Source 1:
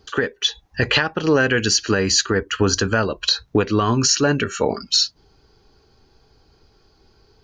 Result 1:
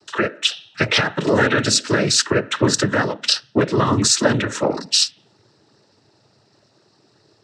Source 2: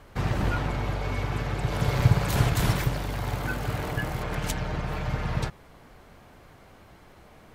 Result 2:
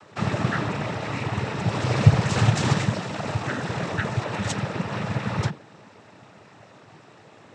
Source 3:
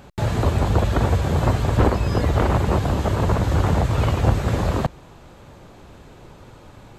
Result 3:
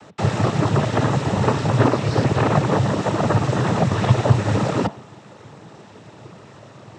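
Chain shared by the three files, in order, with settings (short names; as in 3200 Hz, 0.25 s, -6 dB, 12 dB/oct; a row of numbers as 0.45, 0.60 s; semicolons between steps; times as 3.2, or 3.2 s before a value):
de-hum 216.1 Hz, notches 18; noise vocoder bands 12; normalise peaks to -2 dBFS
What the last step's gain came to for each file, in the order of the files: +1.5, +4.5, +3.5 dB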